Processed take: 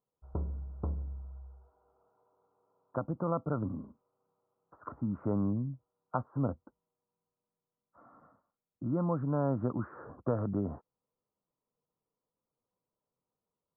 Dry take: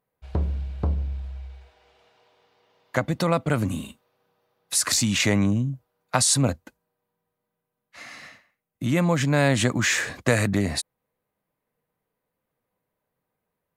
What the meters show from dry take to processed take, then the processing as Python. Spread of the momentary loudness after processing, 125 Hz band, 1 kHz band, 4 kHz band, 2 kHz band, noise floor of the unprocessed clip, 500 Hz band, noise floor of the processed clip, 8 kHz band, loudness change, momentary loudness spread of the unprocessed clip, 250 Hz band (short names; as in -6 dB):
17 LU, -10.5 dB, -10.0 dB, under -40 dB, -28.5 dB, -83 dBFS, -9.5 dB, under -85 dBFS, under -40 dB, -12.0 dB, 18 LU, -9.0 dB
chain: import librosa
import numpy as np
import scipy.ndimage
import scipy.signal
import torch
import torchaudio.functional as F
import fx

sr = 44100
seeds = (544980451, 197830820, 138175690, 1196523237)

y = scipy.signal.sosfilt(scipy.signal.cheby1(6, 3, 1400.0, 'lowpass', fs=sr, output='sos'), x)
y = y * librosa.db_to_amplitude(-8.0)